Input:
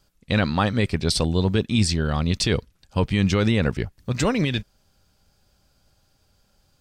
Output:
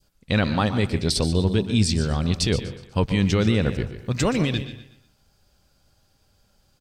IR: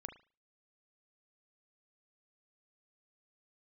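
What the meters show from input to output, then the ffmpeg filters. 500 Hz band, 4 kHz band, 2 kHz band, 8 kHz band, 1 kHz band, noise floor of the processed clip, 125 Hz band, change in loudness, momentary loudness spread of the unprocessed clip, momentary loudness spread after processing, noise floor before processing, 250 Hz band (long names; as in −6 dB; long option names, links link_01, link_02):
0.0 dB, −0.5 dB, −1.5 dB, 0.0 dB, −1.5 dB, −65 dBFS, 0.0 dB, 0.0 dB, 7 LU, 7 LU, −65 dBFS, 0.0 dB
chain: -filter_complex "[0:a]aecho=1:1:122|244|366|488:0.2|0.0738|0.0273|0.0101,asplit=2[link_01][link_02];[1:a]atrim=start_sample=2205,adelay=144[link_03];[link_02][link_03]afir=irnorm=-1:irlink=0,volume=-8.5dB[link_04];[link_01][link_04]amix=inputs=2:normalize=0,adynamicequalizer=threshold=0.01:dfrequency=1400:dqfactor=0.74:tfrequency=1400:tqfactor=0.74:attack=5:release=100:ratio=0.375:range=2.5:mode=cutabove:tftype=bell"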